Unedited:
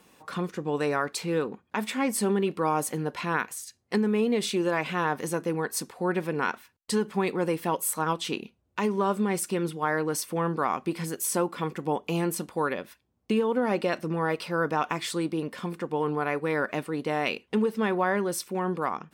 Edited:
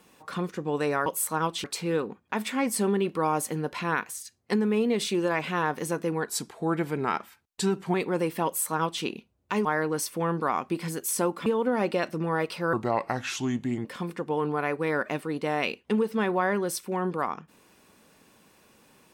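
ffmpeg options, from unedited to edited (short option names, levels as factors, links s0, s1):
-filter_complex "[0:a]asplit=9[s0][s1][s2][s3][s4][s5][s6][s7][s8];[s0]atrim=end=1.062[s9];[s1]atrim=start=7.718:end=8.302[s10];[s2]atrim=start=1.058:end=5.694[s11];[s3]atrim=start=5.69:end=7.21,asetpts=PTS-STARTPTS,asetrate=40131,aresample=44100[s12];[s4]atrim=start=7.206:end=8.922[s13];[s5]atrim=start=9.808:end=11.622[s14];[s6]atrim=start=13.358:end=14.634[s15];[s7]atrim=start=14.63:end=15.48,asetpts=PTS-STARTPTS,asetrate=33516,aresample=44100,atrim=end_sample=49322,asetpts=PTS-STARTPTS[s16];[s8]atrim=start=15.476[s17];[s9][s10]acrossfade=d=0.004:c1=hsin:c2=hsin[s18];[s18][s11]acrossfade=d=0.004:c1=hsin:c2=hsin[s19];[s19][s12]acrossfade=d=0.004:c1=hsin:c2=hsin[s20];[s20][s13]acrossfade=d=0.004:c1=hsin:c2=hsin[s21];[s21][s14]acrossfade=d=0.004:c1=hsin:c2=hsin[s22];[s22][s15]acrossfade=d=0.004:c1=hsin:c2=hsin[s23];[s23][s16]acrossfade=d=0.004:c1=hsin:c2=hsin[s24];[s24][s17]acrossfade=d=0.004:c1=hsin:c2=hsin"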